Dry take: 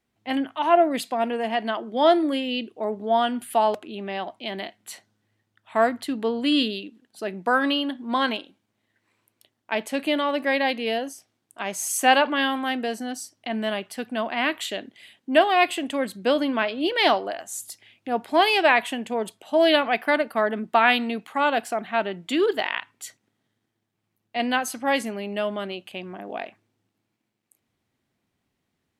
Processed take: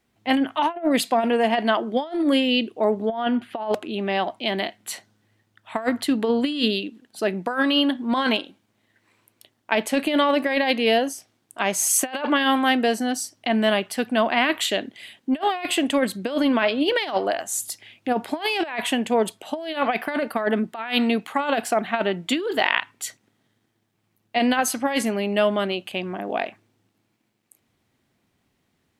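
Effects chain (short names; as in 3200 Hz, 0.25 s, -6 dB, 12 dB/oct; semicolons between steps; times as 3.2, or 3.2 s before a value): negative-ratio compressor -24 dBFS, ratio -0.5; 3.09–3.73 air absorption 270 m; gain +4 dB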